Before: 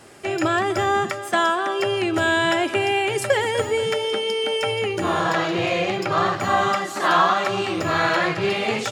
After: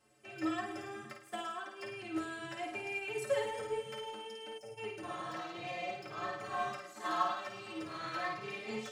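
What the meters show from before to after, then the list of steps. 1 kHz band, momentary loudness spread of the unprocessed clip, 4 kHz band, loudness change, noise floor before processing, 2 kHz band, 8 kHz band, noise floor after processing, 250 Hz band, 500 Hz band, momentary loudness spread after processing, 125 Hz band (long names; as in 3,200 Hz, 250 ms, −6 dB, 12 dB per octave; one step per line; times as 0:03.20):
−18.0 dB, 4 LU, −20.5 dB, −18.5 dB, −32 dBFS, −19.5 dB, −19.0 dB, −54 dBFS, −17.0 dB, −18.5 dB, 10 LU, −22.5 dB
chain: stiff-string resonator 65 Hz, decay 0.45 s, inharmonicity 0.03
flutter between parallel walls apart 9.1 metres, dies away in 0.6 s
in parallel at −7 dB: soft clipping −31 dBFS, distortion −8 dB
on the sum: gain on a spectral selection 0:04.58–0:04.78, 830–4,700 Hz −14 dB
expander for the loud parts 1.5 to 1, over −39 dBFS
level −7.5 dB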